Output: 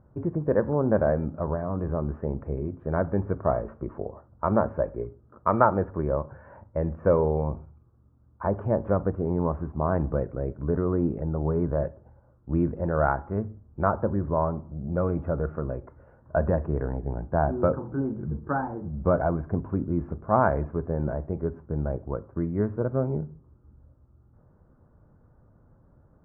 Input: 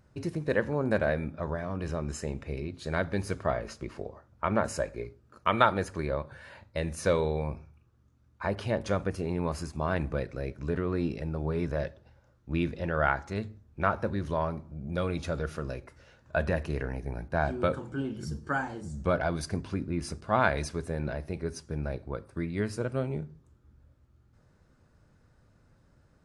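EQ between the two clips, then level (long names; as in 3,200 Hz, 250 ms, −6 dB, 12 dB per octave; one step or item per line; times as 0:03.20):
inverse Chebyshev low-pass filter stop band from 4,000 Hz, stop band 60 dB
+5.0 dB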